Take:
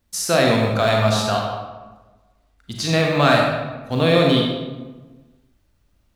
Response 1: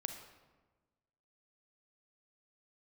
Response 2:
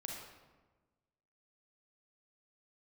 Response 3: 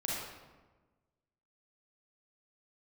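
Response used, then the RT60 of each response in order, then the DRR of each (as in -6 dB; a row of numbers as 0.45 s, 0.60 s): 2; 1.3 s, 1.3 s, 1.3 s; 6.0 dB, -1.0 dB, -5.5 dB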